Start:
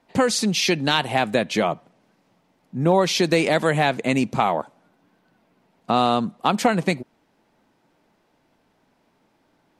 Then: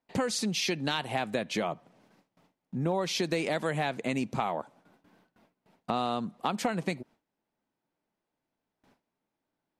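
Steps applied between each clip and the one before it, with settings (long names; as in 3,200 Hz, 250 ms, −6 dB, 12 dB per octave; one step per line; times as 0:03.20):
downward compressor 2 to 1, threshold −35 dBFS, peak gain reduction 12.5 dB
noise gate with hold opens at −52 dBFS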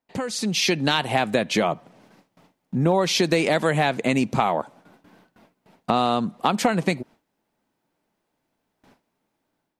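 automatic gain control gain up to 9.5 dB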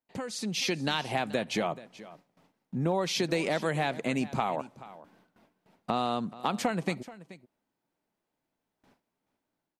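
single-tap delay 430 ms −17.5 dB
level −8.5 dB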